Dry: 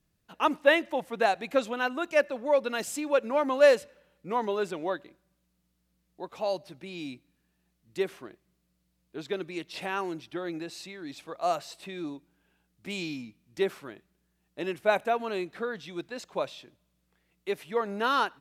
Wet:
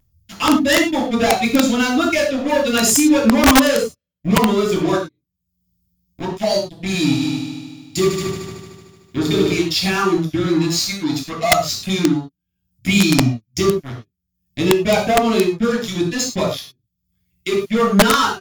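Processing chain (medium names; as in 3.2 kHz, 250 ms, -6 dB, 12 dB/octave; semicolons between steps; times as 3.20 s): expander on every frequency bin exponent 1.5; treble shelf 3.2 kHz +6.5 dB; upward compressor, threshold -43 dBFS; waveshaping leveller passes 5; compression 3:1, threshold -22 dBFS, peak gain reduction 8.5 dB; bass shelf 440 Hz +5 dB; 6.98–9.50 s: multi-head delay 75 ms, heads all three, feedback 53%, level -8.5 dB; reverberation, pre-delay 3 ms, DRR -2 dB; integer overflow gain 2 dB; vibrato 0.32 Hz 8.5 cents; trim -2.5 dB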